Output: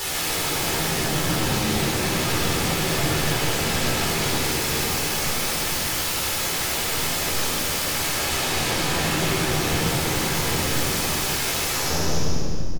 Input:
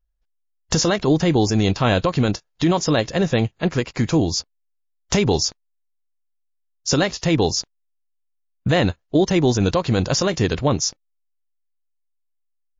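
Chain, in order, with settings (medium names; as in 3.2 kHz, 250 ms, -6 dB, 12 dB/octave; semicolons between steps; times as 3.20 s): spectral blur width 1330 ms; 7.38–8.74 s: high-pass 230 Hz -> 100 Hz 24 dB/octave; in parallel at -1 dB: compression, threshold -33 dBFS, peak gain reduction 14 dB; on the sum: saturation -25 dBFS, distortion -8 dB; peak limiter -32.5 dBFS, peak gain reduction 7.5 dB; sine folder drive 18 dB, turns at -32 dBFS; doubling 13 ms -3 dB; frequency-shifting echo 149 ms, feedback 46%, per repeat -33 Hz, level -7.5 dB; simulated room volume 3400 m³, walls mixed, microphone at 4.1 m; trim +3 dB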